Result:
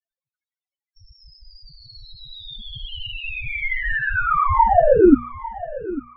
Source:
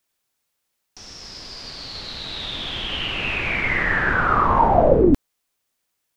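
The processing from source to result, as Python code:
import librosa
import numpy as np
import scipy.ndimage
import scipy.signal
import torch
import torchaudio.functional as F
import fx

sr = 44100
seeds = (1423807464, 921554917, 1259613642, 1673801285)

p1 = fx.peak_eq(x, sr, hz=130.0, db=3.0, octaves=1.5)
p2 = fx.hum_notches(p1, sr, base_hz=60, count=4)
p3 = fx.spec_topn(p2, sr, count=4)
p4 = fx.air_absorb(p3, sr, metres=200.0)
p5 = p4 + fx.echo_feedback(p4, sr, ms=849, feedback_pct=26, wet_db=-16, dry=0)
y = p5 * librosa.db_to_amplitude(5.0)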